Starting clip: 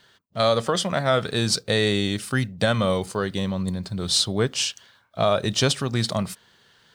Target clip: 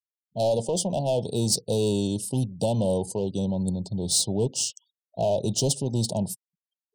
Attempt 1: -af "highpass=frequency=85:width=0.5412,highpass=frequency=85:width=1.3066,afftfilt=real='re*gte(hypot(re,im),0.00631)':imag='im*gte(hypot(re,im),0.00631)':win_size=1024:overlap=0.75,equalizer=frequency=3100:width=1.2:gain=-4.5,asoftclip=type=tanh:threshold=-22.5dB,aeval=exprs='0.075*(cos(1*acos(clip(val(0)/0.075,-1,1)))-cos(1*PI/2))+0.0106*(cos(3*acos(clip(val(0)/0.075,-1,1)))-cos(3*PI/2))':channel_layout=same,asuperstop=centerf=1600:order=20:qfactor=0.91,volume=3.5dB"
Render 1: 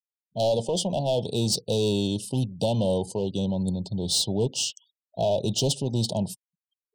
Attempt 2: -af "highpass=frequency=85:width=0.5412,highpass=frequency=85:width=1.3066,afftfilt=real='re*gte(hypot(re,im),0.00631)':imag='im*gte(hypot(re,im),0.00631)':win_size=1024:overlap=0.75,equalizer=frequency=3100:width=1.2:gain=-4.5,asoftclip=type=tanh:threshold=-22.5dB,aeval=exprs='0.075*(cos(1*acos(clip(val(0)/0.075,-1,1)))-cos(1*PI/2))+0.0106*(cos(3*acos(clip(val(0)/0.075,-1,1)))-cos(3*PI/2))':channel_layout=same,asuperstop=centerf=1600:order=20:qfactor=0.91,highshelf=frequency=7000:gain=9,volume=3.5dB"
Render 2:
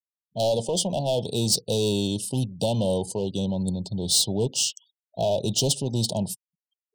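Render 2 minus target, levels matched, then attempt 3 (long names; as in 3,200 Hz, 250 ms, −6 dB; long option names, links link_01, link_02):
4,000 Hz band +4.0 dB
-af "highpass=frequency=85:width=0.5412,highpass=frequency=85:width=1.3066,afftfilt=real='re*gte(hypot(re,im),0.00631)':imag='im*gte(hypot(re,im),0.00631)':win_size=1024:overlap=0.75,equalizer=frequency=3100:width=1.2:gain=-13.5,asoftclip=type=tanh:threshold=-22.5dB,aeval=exprs='0.075*(cos(1*acos(clip(val(0)/0.075,-1,1)))-cos(1*PI/2))+0.0106*(cos(3*acos(clip(val(0)/0.075,-1,1)))-cos(3*PI/2))':channel_layout=same,asuperstop=centerf=1600:order=20:qfactor=0.91,highshelf=frequency=7000:gain=9,volume=3.5dB"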